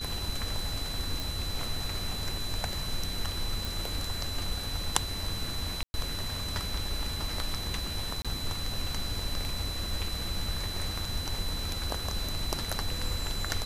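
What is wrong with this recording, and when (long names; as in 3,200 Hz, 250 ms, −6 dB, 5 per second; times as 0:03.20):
whistle 4,000 Hz −37 dBFS
0:01.20: click
0:03.65: click
0:05.83–0:05.94: drop-out 110 ms
0:08.22–0:08.25: drop-out 26 ms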